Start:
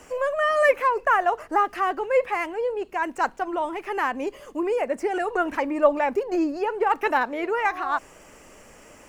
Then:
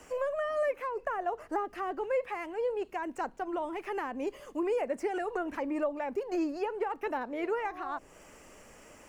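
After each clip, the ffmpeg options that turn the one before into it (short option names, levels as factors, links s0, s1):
-filter_complex "[0:a]acrossover=split=640[s0][s1];[s0]alimiter=limit=0.0944:level=0:latency=1:release=498[s2];[s1]acompressor=threshold=0.0251:ratio=6[s3];[s2][s3]amix=inputs=2:normalize=0,volume=0.562"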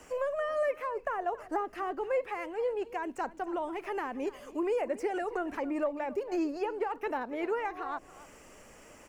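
-af "aecho=1:1:277:0.126"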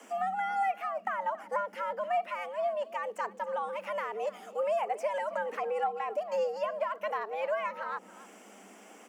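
-af "afreqshift=190,equalizer=f=310:w=2.7:g=7"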